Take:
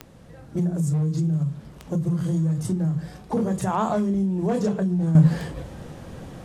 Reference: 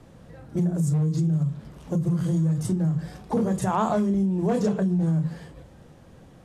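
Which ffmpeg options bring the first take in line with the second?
ffmpeg -i in.wav -af "adeclick=threshold=4,agate=range=-21dB:threshold=-36dB,asetnsamples=nb_out_samples=441:pad=0,asendcmd='5.15 volume volume -11dB',volume=0dB" out.wav

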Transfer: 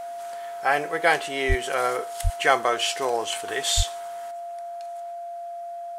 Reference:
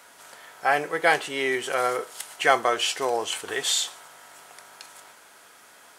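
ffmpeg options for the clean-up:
ffmpeg -i in.wav -filter_complex "[0:a]bandreject=frequency=690:width=30,asplit=3[link_01][link_02][link_03];[link_01]afade=type=out:start_time=1.48:duration=0.02[link_04];[link_02]highpass=frequency=140:width=0.5412,highpass=frequency=140:width=1.3066,afade=type=in:start_time=1.48:duration=0.02,afade=type=out:start_time=1.6:duration=0.02[link_05];[link_03]afade=type=in:start_time=1.6:duration=0.02[link_06];[link_04][link_05][link_06]amix=inputs=3:normalize=0,asplit=3[link_07][link_08][link_09];[link_07]afade=type=out:start_time=2.23:duration=0.02[link_10];[link_08]highpass=frequency=140:width=0.5412,highpass=frequency=140:width=1.3066,afade=type=in:start_time=2.23:duration=0.02,afade=type=out:start_time=2.35:duration=0.02[link_11];[link_09]afade=type=in:start_time=2.35:duration=0.02[link_12];[link_10][link_11][link_12]amix=inputs=3:normalize=0,asplit=3[link_13][link_14][link_15];[link_13]afade=type=out:start_time=3.76:duration=0.02[link_16];[link_14]highpass=frequency=140:width=0.5412,highpass=frequency=140:width=1.3066,afade=type=in:start_time=3.76:duration=0.02,afade=type=out:start_time=3.88:duration=0.02[link_17];[link_15]afade=type=in:start_time=3.88:duration=0.02[link_18];[link_16][link_17][link_18]amix=inputs=3:normalize=0,asetnsamples=nb_out_samples=441:pad=0,asendcmd='4.31 volume volume 9.5dB',volume=0dB" out.wav

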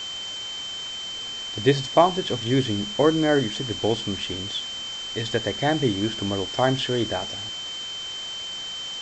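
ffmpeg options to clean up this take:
ffmpeg -i in.wav -af "bandreject=frequency=3100:width=30,afftdn=noise_reduction=30:noise_floor=-33" out.wav

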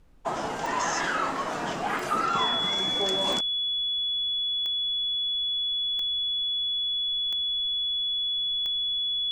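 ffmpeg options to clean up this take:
ffmpeg -i in.wav -af "adeclick=threshold=4,bandreject=frequency=3400:width=30,agate=range=-21dB:threshold=-23dB" out.wav

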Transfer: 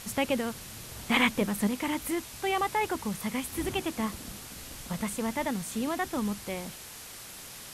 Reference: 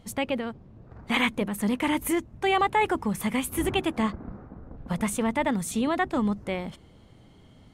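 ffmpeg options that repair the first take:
ffmpeg -i in.wav -af "afwtdn=0.0071,asetnsamples=nb_out_samples=441:pad=0,asendcmd='1.67 volume volume 5.5dB',volume=0dB" out.wav

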